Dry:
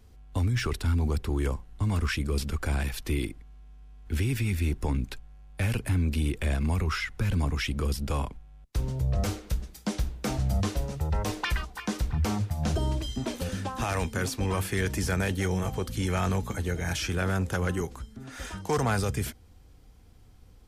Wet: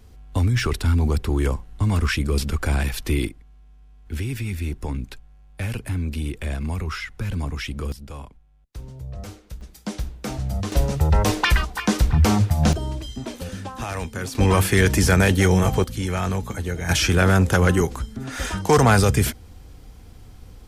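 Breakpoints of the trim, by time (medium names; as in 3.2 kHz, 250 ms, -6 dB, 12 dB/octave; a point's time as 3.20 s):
+6.5 dB
from 3.29 s 0 dB
from 7.92 s -7.5 dB
from 9.61 s +0.5 dB
from 10.72 s +10.5 dB
from 12.73 s 0 dB
from 14.35 s +11 dB
from 15.84 s +3 dB
from 16.89 s +11 dB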